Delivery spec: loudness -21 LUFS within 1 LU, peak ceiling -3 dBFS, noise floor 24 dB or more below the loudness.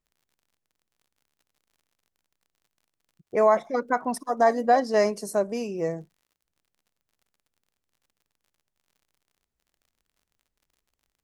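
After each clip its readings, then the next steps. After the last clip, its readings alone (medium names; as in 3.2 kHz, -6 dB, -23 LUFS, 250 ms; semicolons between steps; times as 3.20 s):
tick rate 54 per s; loudness -24.5 LUFS; peak level -8.5 dBFS; loudness target -21.0 LUFS
-> de-click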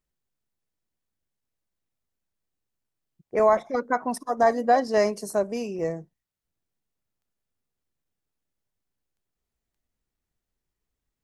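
tick rate 0.36 per s; loudness -24.5 LUFS; peak level -8.5 dBFS; loudness target -21.0 LUFS
-> trim +3.5 dB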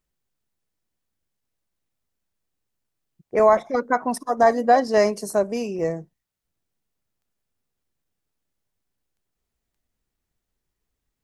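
loudness -21.0 LUFS; peak level -5.0 dBFS; noise floor -82 dBFS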